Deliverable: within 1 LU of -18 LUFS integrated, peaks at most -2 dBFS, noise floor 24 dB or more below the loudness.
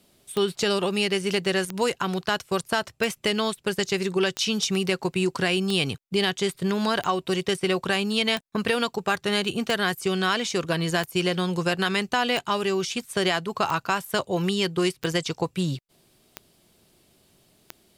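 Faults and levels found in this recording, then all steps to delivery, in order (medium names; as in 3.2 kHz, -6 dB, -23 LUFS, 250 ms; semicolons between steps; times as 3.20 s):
clicks found 14; loudness -25.0 LUFS; peak level -9.5 dBFS; loudness target -18.0 LUFS
-> de-click; trim +7 dB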